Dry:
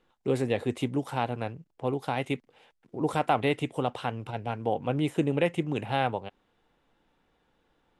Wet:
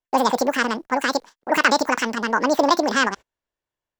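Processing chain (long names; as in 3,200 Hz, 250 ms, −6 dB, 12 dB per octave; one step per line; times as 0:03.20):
noise gate −55 dBFS, range −32 dB
wrong playback speed 7.5 ips tape played at 15 ips
transient designer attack 0 dB, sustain +4 dB
level +8.5 dB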